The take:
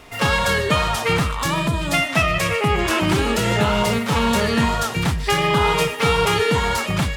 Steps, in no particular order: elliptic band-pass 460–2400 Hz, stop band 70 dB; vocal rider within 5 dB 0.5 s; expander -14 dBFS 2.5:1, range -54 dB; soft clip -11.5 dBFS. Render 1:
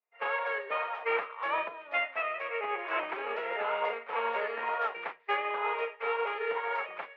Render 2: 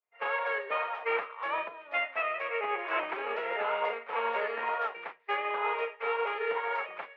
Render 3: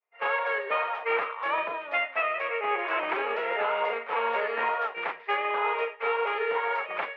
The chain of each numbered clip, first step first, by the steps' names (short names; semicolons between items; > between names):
soft clip > elliptic band-pass > vocal rider > expander; soft clip > elliptic band-pass > expander > vocal rider; soft clip > expander > elliptic band-pass > vocal rider